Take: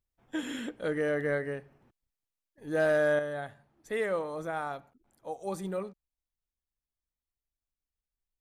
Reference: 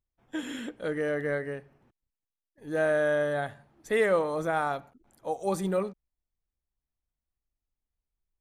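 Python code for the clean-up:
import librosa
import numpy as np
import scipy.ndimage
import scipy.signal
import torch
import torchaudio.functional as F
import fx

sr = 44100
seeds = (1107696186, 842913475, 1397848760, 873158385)

y = fx.fix_declip(x, sr, threshold_db=-19.5)
y = fx.fix_level(y, sr, at_s=3.19, step_db=6.5)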